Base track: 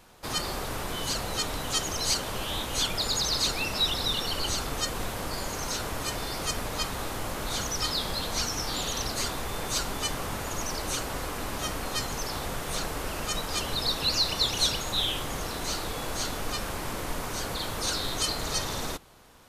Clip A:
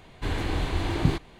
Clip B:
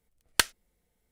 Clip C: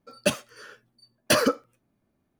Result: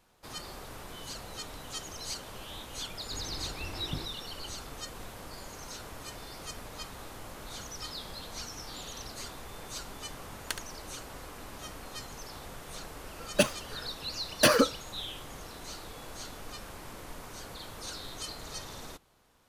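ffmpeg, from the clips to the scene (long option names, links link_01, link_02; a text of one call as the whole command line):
ffmpeg -i bed.wav -i cue0.wav -i cue1.wav -i cue2.wav -filter_complex "[0:a]volume=-11.5dB[link_01];[2:a]aecho=1:1:71:0.335[link_02];[1:a]atrim=end=1.39,asetpts=PTS-STARTPTS,volume=-15dB,afade=type=in:duration=0.004:curve=hsin,afade=type=out:start_time=1.386:duration=0.004:curve=hsin,adelay=2880[link_03];[link_02]atrim=end=1.11,asetpts=PTS-STARTPTS,volume=-13dB,afade=type=in:duration=0.004:curve=hsin,afade=type=out:start_time=1.106:duration=0.004:curve=hsin,adelay=10110[link_04];[3:a]atrim=end=2.39,asetpts=PTS-STARTPTS,volume=-1dB,afade=type=in:duration=0.004:curve=hsin,afade=type=out:start_time=2.386:duration=0.004:curve=hsin,adelay=13130[link_05];[link_01][link_03][link_04][link_05]amix=inputs=4:normalize=0" out.wav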